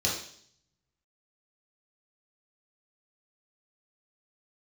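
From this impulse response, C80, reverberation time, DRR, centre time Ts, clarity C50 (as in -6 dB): 8.5 dB, 0.60 s, -5.0 dB, 37 ms, 4.0 dB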